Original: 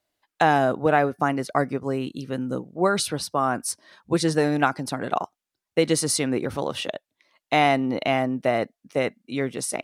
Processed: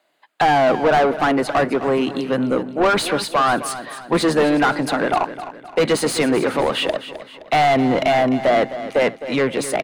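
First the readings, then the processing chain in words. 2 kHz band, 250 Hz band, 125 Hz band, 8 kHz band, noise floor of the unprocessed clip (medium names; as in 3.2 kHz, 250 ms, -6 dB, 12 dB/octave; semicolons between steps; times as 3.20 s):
+6.0 dB, +5.5 dB, +1.0 dB, -0.5 dB, under -85 dBFS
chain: octave divider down 1 oct, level -4 dB; high-pass 140 Hz 24 dB/octave; peaking EQ 5.6 kHz -12.5 dB 0.21 oct; overdrive pedal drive 28 dB, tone 2 kHz, clips at -3.5 dBFS; feedback delay 260 ms, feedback 43%, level -13 dB; trim -3.5 dB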